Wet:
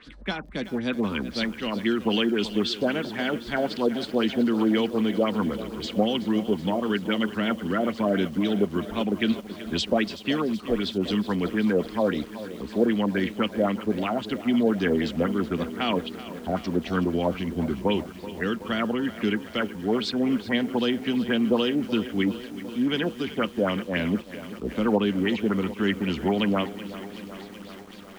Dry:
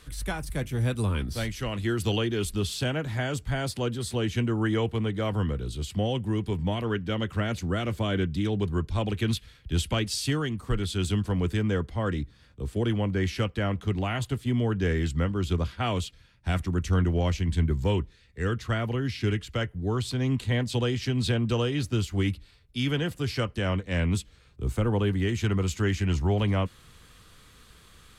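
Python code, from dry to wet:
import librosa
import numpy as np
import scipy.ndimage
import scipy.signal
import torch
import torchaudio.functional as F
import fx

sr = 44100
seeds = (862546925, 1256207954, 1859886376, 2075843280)

y = fx.filter_lfo_lowpass(x, sr, shape='sine', hz=3.8, low_hz=550.0, high_hz=5000.0, q=3.6)
y = fx.low_shelf_res(y, sr, hz=160.0, db=-10.5, q=3.0)
y = fx.echo_crushed(y, sr, ms=377, feedback_pct=80, bits=7, wet_db=-14.0)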